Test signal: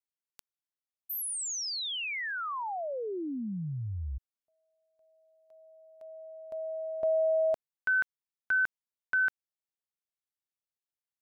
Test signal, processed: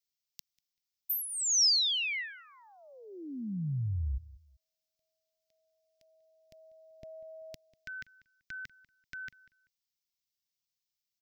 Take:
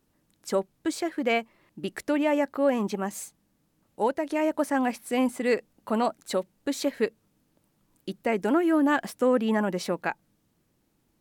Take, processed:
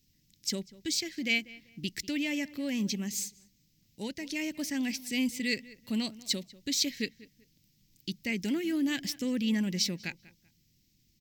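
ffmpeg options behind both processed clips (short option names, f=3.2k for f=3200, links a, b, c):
-filter_complex "[0:a]firequalizer=gain_entry='entry(130,0);entry(460,-19);entry(730,-26);entry(1300,-26);entry(2000,-3);entry(5300,9);entry(10000,-9);entry(14000,4)':delay=0.05:min_phase=1,asplit=2[a][b];[b]adelay=193,lowpass=f=2.8k:p=1,volume=-19dB,asplit=2[c][d];[d]adelay=193,lowpass=f=2.8k:p=1,volume=0.28[e];[c][e]amix=inputs=2:normalize=0[f];[a][f]amix=inputs=2:normalize=0,volume=3dB"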